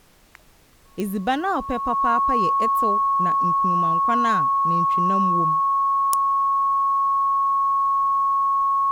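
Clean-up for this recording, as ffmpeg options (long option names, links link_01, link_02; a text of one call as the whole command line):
ffmpeg -i in.wav -af "adeclick=threshold=4,bandreject=frequency=1100:width=30,agate=range=-21dB:threshold=-43dB" out.wav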